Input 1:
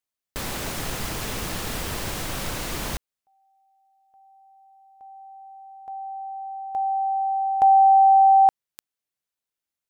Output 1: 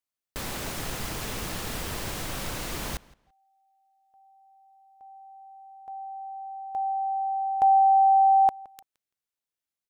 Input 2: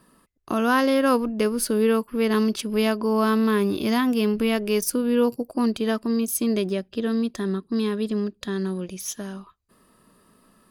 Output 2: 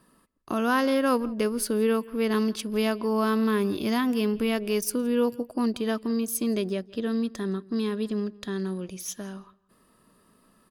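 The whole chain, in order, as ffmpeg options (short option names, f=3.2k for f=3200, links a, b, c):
-filter_complex "[0:a]asplit=2[a][b];[b]adelay=168,lowpass=f=4.4k:p=1,volume=-22dB,asplit=2[c][d];[d]adelay=168,lowpass=f=4.4k:p=1,volume=0.22[e];[a][c][e]amix=inputs=3:normalize=0,volume=-3.5dB"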